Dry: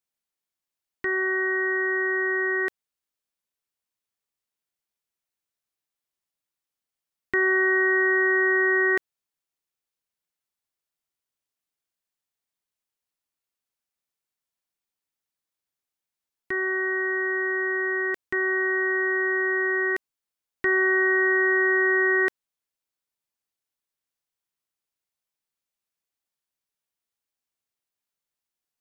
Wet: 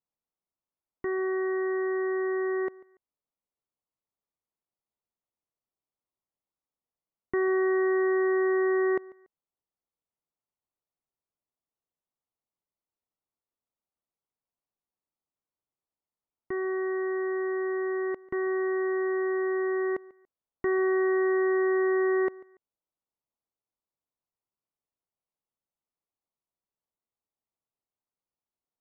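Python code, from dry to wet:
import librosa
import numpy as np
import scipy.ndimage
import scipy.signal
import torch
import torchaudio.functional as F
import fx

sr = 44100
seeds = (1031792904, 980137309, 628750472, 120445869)

y = scipy.signal.savgol_filter(x, 65, 4, mode='constant')
y = fx.echo_feedback(y, sr, ms=143, feedback_pct=30, wet_db=-22)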